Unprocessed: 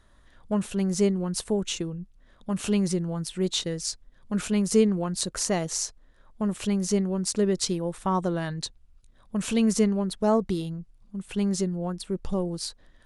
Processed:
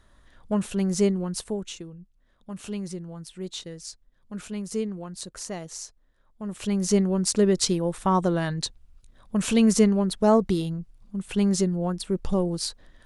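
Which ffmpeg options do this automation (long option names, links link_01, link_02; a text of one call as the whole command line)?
ffmpeg -i in.wav -af "volume=13dB,afade=type=out:start_time=1.09:duration=0.68:silence=0.334965,afade=type=in:start_time=6.42:duration=0.54:silence=0.251189" out.wav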